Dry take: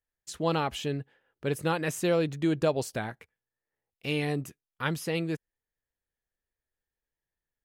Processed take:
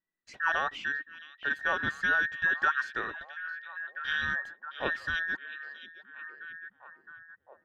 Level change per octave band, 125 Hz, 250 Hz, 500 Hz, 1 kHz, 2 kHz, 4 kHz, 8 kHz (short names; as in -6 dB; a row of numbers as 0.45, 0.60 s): -18.0 dB, -16.0 dB, -12.5 dB, +1.5 dB, +11.5 dB, -1.5 dB, under -10 dB